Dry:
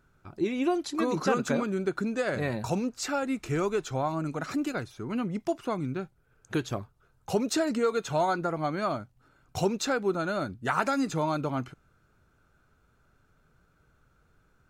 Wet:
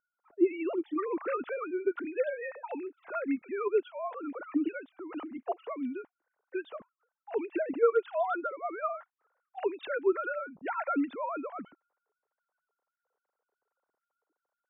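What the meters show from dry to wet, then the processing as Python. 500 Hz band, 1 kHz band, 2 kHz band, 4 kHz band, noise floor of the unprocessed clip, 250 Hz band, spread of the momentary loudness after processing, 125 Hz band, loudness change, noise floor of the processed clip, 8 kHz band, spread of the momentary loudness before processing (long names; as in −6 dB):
−1.5 dB, −5.0 dB, −5.0 dB, below −15 dB, −67 dBFS, −5.0 dB, 12 LU, below −30 dB, −3.5 dB, below −85 dBFS, below −40 dB, 8 LU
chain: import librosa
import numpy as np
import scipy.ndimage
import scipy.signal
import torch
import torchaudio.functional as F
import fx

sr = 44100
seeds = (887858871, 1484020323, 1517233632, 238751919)

y = fx.sine_speech(x, sr)
y = fx.env_lowpass(y, sr, base_hz=740.0, full_db=-26.5)
y = F.gain(torch.from_numpy(y), -3.5).numpy()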